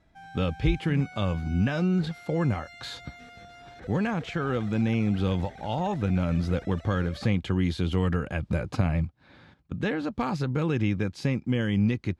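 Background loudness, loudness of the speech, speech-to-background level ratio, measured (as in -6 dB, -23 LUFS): -45.5 LUFS, -28.0 LUFS, 17.5 dB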